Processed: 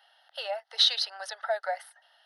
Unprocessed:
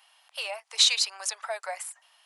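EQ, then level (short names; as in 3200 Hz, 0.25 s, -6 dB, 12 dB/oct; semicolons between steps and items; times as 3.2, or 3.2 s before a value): LPF 2100 Hz 6 dB/oct; fixed phaser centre 1600 Hz, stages 8; +5.5 dB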